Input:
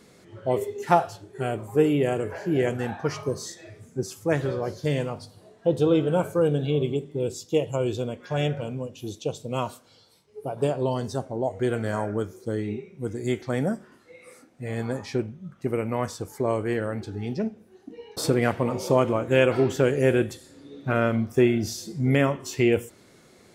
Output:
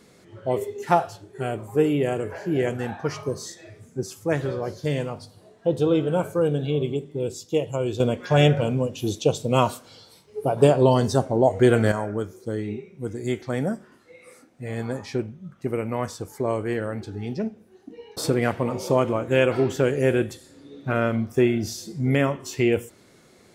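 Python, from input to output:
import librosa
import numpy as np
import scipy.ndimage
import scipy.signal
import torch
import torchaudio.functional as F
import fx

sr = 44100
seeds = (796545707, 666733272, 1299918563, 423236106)

y = fx.edit(x, sr, fx.clip_gain(start_s=8.0, length_s=3.92, db=8.5), tone=tone)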